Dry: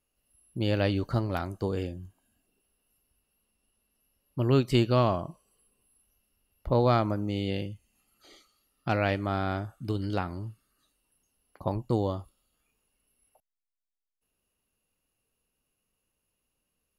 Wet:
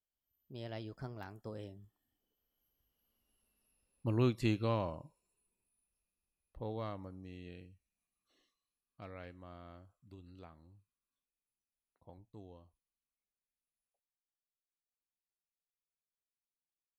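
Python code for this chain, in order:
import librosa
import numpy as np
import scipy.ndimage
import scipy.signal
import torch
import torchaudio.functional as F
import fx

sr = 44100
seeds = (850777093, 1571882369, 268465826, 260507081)

y = fx.doppler_pass(x, sr, speed_mps=36, closest_m=22.0, pass_at_s=3.5)
y = y * 10.0 ** (-4.0 / 20.0)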